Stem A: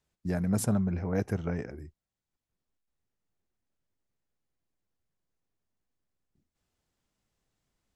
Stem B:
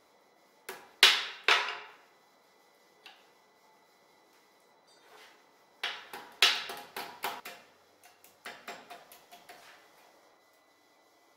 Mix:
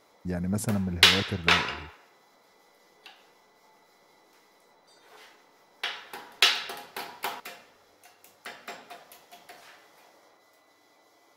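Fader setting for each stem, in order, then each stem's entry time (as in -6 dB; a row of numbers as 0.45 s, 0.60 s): -1.0 dB, +3.0 dB; 0.00 s, 0.00 s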